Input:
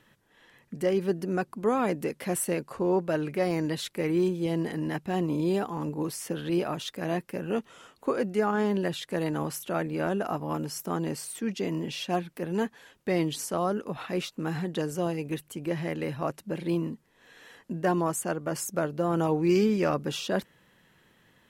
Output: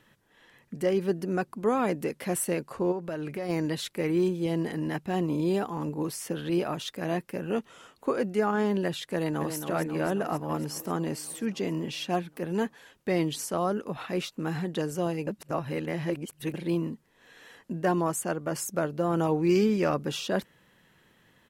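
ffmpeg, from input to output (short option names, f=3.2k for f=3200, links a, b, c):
-filter_complex "[0:a]asplit=3[a][b][c];[a]afade=t=out:st=2.91:d=0.02[d];[b]acompressor=threshold=-30dB:ratio=5:attack=3.2:release=140:knee=1:detection=peak,afade=t=in:st=2.91:d=0.02,afade=t=out:st=3.48:d=0.02[e];[c]afade=t=in:st=3.48:d=0.02[f];[d][e][f]amix=inputs=3:normalize=0,asplit=2[g][h];[h]afade=t=in:st=9.13:d=0.01,afade=t=out:st=9.56:d=0.01,aecho=0:1:270|540|810|1080|1350|1620|1890|2160|2430|2700|2970|3240:0.421697|0.316272|0.237204|0.177903|0.133427|0.100071|0.0750529|0.0562897|0.0422173|0.0316629|0.0237472|0.0178104[i];[g][i]amix=inputs=2:normalize=0,asplit=3[j][k][l];[j]atrim=end=15.272[m];[k]atrim=start=15.268:end=16.542,asetpts=PTS-STARTPTS,areverse[n];[l]atrim=start=16.538[o];[m][n]acrossfade=d=0.004:c1=hsin:c2=hsin[p];[p][o]acrossfade=d=0.004:c1=hsin:c2=hsin"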